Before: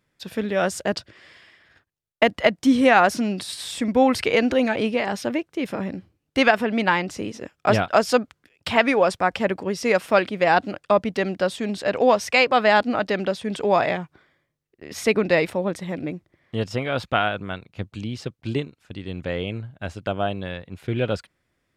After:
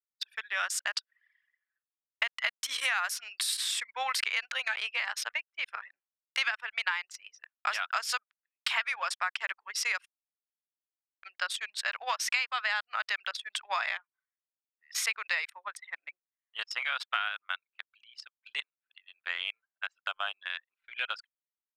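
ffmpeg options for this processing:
-filter_complex "[0:a]asettb=1/sr,asplit=3[a][b][c];[a]atrim=end=2.484[d];[b]atrim=start=2.48:end=3.57,asetpts=PTS-STARTPTS,afade=t=in:d=0.004:c=qsin,afade=t=out:st=1.086:d=0.004:c=qsin,highshelf=f=9.2k:g=10[e];[c]atrim=start=3.566[f];[d][e]acrossfade=d=0.004:c1=hsin:c2=qsin[g];[g][f]acrossfade=d=0.004:c1=qsin:c2=hsin,asplit=3[h][i][j];[h]atrim=end=10.06,asetpts=PTS-STARTPTS,afade=t=out:st=10.056:d=0.004:c=hsin[k];[i]atrim=start=10.06:end=11.23,asetpts=PTS-STARTPTS,volume=0[l];[j]atrim=start=11.23,asetpts=PTS-STARTPTS,afade=t=in:d=0.004:c=hsin[m];[k][l][m]concat=n=3:v=0:a=1,highpass=f=1.2k:w=0.5412,highpass=f=1.2k:w=1.3066,anlmdn=2.51,acompressor=threshold=-32dB:ratio=5,volume=4dB"

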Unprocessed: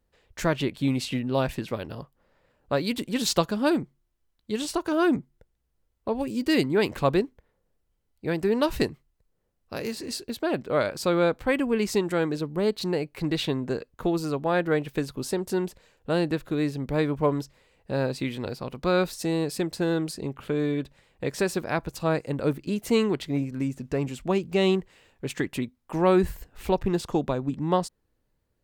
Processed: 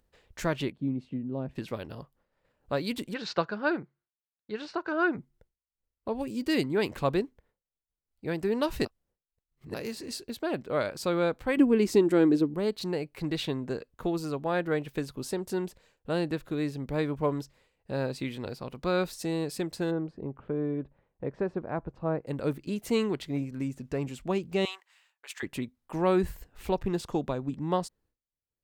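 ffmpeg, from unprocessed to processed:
-filter_complex "[0:a]asplit=3[a][b][c];[a]afade=t=out:st=0.71:d=0.02[d];[b]bandpass=f=210:t=q:w=0.97,afade=t=in:st=0.71:d=0.02,afade=t=out:st=1.55:d=0.02[e];[c]afade=t=in:st=1.55:d=0.02[f];[d][e][f]amix=inputs=3:normalize=0,asplit=3[g][h][i];[g]afade=t=out:st=3.13:d=0.02[j];[h]highpass=160,equalizer=f=250:t=q:w=4:g=-10,equalizer=f=1.5k:t=q:w=4:g=9,equalizer=f=3.3k:t=q:w=4:g=-9,lowpass=f=4.3k:w=0.5412,lowpass=f=4.3k:w=1.3066,afade=t=in:st=3.13:d=0.02,afade=t=out:st=5.17:d=0.02[k];[i]afade=t=in:st=5.17:d=0.02[l];[j][k][l]amix=inputs=3:normalize=0,asettb=1/sr,asplit=3[m][n][o];[m]atrim=end=11.574[p];[n]atrim=start=11.57:end=12.54,asetpts=PTS-STARTPTS,afade=t=in:d=0.004:c=qsin,afade=t=out:st=0.966:d=0.004:c=qsin,equalizer=f=310:t=o:w=0.93:g=12.5[q];[o]atrim=start=12.536[r];[p][q]acrossfade=d=0.004:c1=hsin:c2=qsin[s];[s][r]acrossfade=d=0.004:c1=qsin:c2=hsin,asplit=3[t][u][v];[t]afade=t=out:st=19.9:d=0.02[w];[u]lowpass=1.1k,afade=t=in:st=19.9:d=0.02,afade=t=out:st=22.26:d=0.02[x];[v]afade=t=in:st=22.26:d=0.02[y];[w][x][y]amix=inputs=3:normalize=0,asettb=1/sr,asplit=3[z][aa][ab];[z]atrim=end=24.654[ac];[aa]atrim=start=24.65:end=25.43,asetpts=PTS-STARTPTS,afade=t=in:d=0.004:c=qsin,afade=t=out:st=0.776:d=0.004:c=qsin,highpass=f=910:w=0.5412,highpass=f=910:w=1.3066[ad];[ab]atrim=start=25.426[ae];[ac][ad]acrossfade=d=0.004:c1=hsin:c2=qsin[af];[af][ae]acrossfade=d=0.004:c1=qsin:c2=hsin,asplit=3[ag][ah][ai];[ag]atrim=end=8.852[aj];[ah]atrim=start=8.848:end=9.742,asetpts=PTS-STARTPTS,areverse[ak];[ai]atrim=start=9.738[al];[aj][ak]acrossfade=d=0.004:c1=hsin:c2=hsin[am];[am][al]acrossfade=d=0.004:c1=hsin:c2=hsin,agate=range=-33dB:threshold=-55dB:ratio=3:detection=peak,acompressor=mode=upward:threshold=-43dB:ratio=2.5,volume=-4.5dB"

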